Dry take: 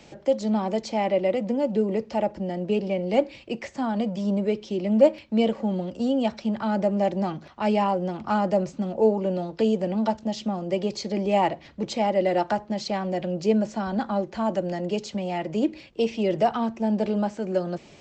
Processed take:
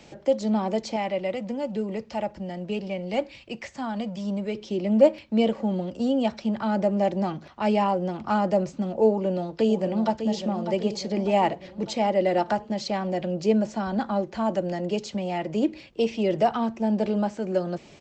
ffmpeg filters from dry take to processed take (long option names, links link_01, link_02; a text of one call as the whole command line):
ffmpeg -i in.wav -filter_complex "[0:a]asettb=1/sr,asplit=3[link_01][link_02][link_03];[link_01]atrim=end=0.964[link_04];[link_02]atrim=start=0.96:end=4.55,asetpts=PTS-STARTPTS,afade=type=in:duration=0.004:curve=qsin,afade=type=out:start_time=3.586:duration=0.004:curve=qsin,equalizer=frequency=370:width_type=o:width=2:gain=-7[link_05];[link_03]atrim=start=4.546[link_06];[link_04][link_05]acrossfade=duration=0.004:curve1=hsin:curve2=qsin[link_07];[link_07][link_06]acrossfade=duration=0.004:curve1=qsin:curve2=hsin,asplit=2[link_08][link_09];[link_09]afade=type=in:start_time=9.09:duration=0.01,afade=type=out:start_time=10.27:duration=0.01,aecho=0:1:600|1200|1800|2400|3000|3600:0.354813|0.195147|0.107331|0.0590321|0.0324676|0.0178572[link_10];[link_08][link_10]amix=inputs=2:normalize=0" out.wav